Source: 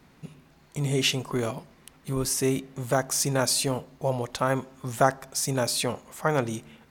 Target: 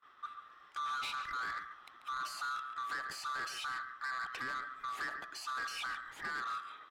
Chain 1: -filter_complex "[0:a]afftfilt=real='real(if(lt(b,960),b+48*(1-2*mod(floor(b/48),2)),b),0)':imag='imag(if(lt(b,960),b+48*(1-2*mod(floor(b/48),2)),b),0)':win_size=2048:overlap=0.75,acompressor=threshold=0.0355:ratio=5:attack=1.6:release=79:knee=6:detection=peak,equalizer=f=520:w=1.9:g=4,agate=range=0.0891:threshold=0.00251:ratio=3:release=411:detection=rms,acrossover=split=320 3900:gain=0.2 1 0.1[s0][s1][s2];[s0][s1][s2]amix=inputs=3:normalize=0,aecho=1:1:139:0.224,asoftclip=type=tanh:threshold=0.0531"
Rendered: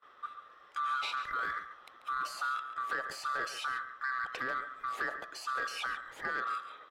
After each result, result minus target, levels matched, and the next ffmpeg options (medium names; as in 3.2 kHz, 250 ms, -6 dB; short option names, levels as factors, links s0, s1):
500 Hz band +7.0 dB; saturation: distortion -10 dB
-filter_complex "[0:a]afftfilt=real='real(if(lt(b,960),b+48*(1-2*mod(floor(b/48),2)),b),0)':imag='imag(if(lt(b,960),b+48*(1-2*mod(floor(b/48),2)),b),0)':win_size=2048:overlap=0.75,acompressor=threshold=0.0355:ratio=5:attack=1.6:release=79:knee=6:detection=peak,equalizer=f=520:w=1.9:g=-7,agate=range=0.0891:threshold=0.00251:ratio=3:release=411:detection=rms,acrossover=split=320 3900:gain=0.2 1 0.1[s0][s1][s2];[s0][s1][s2]amix=inputs=3:normalize=0,aecho=1:1:139:0.224,asoftclip=type=tanh:threshold=0.0531"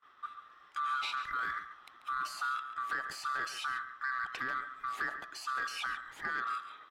saturation: distortion -11 dB
-filter_complex "[0:a]afftfilt=real='real(if(lt(b,960),b+48*(1-2*mod(floor(b/48),2)),b),0)':imag='imag(if(lt(b,960),b+48*(1-2*mod(floor(b/48),2)),b),0)':win_size=2048:overlap=0.75,acompressor=threshold=0.0355:ratio=5:attack=1.6:release=79:knee=6:detection=peak,equalizer=f=520:w=1.9:g=-7,agate=range=0.0891:threshold=0.00251:ratio=3:release=411:detection=rms,acrossover=split=320 3900:gain=0.2 1 0.1[s0][s1][s2];[s0][s1][s2]amix=inputs=3:normalize=0,aecho=1:1:139:0.224,asoftclip=type=tanh:threshold=0.0188"